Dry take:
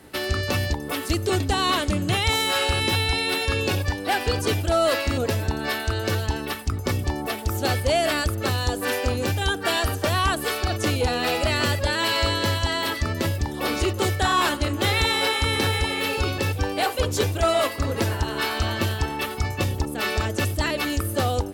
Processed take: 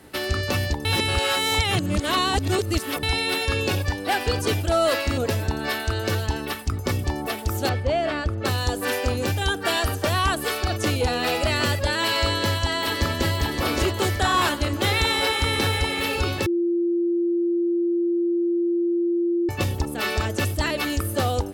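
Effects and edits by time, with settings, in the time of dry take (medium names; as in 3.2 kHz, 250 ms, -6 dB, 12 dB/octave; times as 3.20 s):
0.85–3.03 s: reverse
7.69–8.45 s: tape spacing loss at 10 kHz 23 dB
12.30–13.33 s: echo throw 570 ms, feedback 50%, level -4 dB
14.47–15.59 s: echo throw 570 ms, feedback 65%, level -15.5 dB
16.46–19.49 s: bleep 344 Hz -19 dBFS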